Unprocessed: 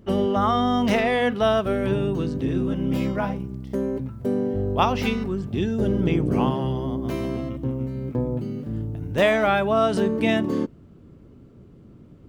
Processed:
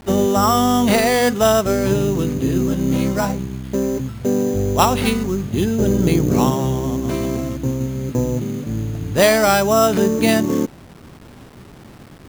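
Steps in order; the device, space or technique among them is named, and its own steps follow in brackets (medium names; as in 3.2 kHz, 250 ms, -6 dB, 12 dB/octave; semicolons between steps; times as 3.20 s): early 8-bit sampler (sample-rate reducer 6.6 kHz, jitter 0%; bit crusher 8-bit); trim +5.5 dB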